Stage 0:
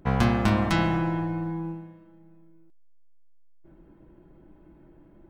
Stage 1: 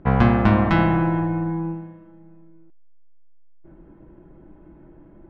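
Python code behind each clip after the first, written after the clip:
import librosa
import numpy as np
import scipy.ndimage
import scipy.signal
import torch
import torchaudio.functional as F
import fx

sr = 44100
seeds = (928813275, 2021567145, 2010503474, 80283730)

y = scipy.signal.sosfilt(scipy.signal.butter(2, 2200.0, 'lowpass', fs=sr, output='sos'), x)
y = F.gain(torch.from_numpy(y), 6.0).numpy()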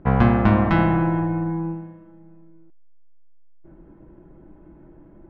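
y = fx.high_shelf(x, sr, hz=3800.0, db=-7.5)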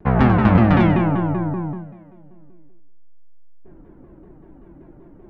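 y = fx.echo_feedback(x, sr, ms=96, feedback_pct=39, wet_db=-4.5)
y = fx.vibrato_shape(y, sr, shape='saw_down', rate_hz=5.2, depth_cents=250.0)
y = F.gain(torch.from_numpy(y), 1.0).numpy()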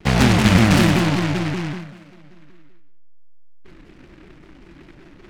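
y = fx.noise_mod_delay(x, sr, seeds[0], noise_hz=1600.0, depth_ms=0.19)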